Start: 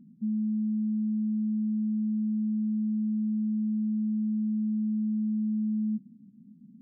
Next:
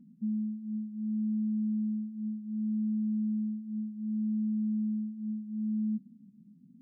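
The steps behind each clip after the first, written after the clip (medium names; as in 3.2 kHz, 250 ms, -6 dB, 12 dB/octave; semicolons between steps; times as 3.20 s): flange 0.66 Hz, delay 4 ms, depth 3.7 ms, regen -32%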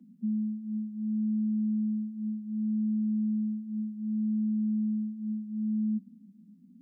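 steep high-pass 170 Hz 96 dB/octave; trim +2 dB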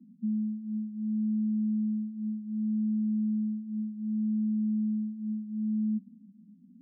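spectral gate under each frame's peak -25 dB strong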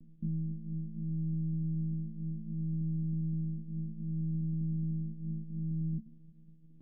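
monotone LPC vocoder at 8 kHz 160 Hz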